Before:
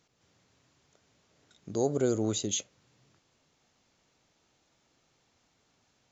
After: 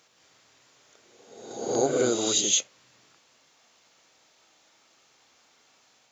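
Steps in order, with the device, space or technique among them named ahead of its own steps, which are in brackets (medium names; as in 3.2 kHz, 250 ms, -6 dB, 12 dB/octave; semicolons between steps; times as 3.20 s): ghost voice (reverse; reverberation RT60 1.1 s, pre-delay 16 ms, DRR 0.5 dB; reverse; high-pass 750 Hz 6 dB/octave); trim +8.5 dB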